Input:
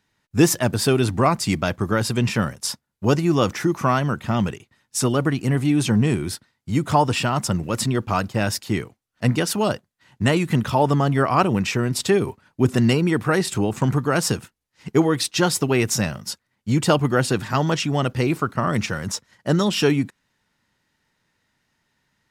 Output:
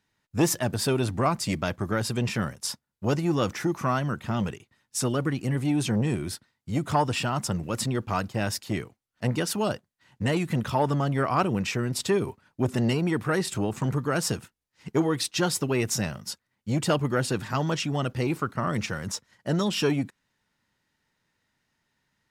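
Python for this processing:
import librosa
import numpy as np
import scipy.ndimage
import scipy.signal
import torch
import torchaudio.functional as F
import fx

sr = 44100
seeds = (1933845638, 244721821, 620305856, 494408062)

y = fx.transformer_sat(x, sr, knee_hz=430.0)
y = y * 10.0 ** (-5.0 / 20.0)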